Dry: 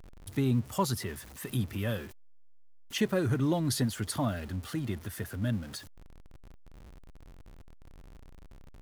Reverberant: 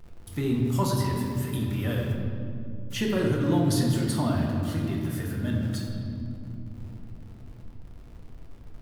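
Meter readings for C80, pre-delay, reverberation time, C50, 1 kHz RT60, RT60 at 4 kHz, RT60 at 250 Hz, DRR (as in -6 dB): 3.0 dB, 6 ms, 2.8 s, 1.5 dB, 2.2 s, 1.4 s, 4.8 s, -2.5 dB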